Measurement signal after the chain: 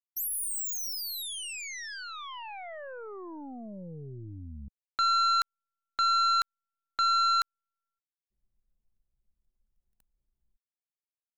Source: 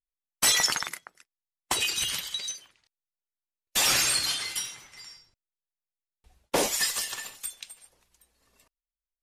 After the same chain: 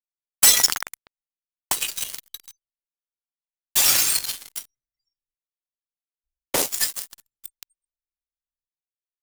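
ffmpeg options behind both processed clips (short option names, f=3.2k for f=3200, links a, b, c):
-af "aeval=exprs='0.188*(cos(1*acos(clip(val(0)/0.188,-1,1)))-cos(1*PI/2))+0.00299*(cos(2*acos(clip(val(0)/0.188,-1,1)))-cos(2*PI/2))+0.0531*(cos(3*acos(clip(val(0)/0.188,-1,1)))-cos(3*PI/2))+0.00376*(cos(4*acos(clip(val(0)/0.188,-1,1)))-cos(4*PI/2))+0.00531*(cos(7*acos(clip(val(0)/0.188,-1,1)))-cos(7*PI/2))':c=same,crystalizer=i=1.5:c=0,anlmdn=0.000398,volume=4dB"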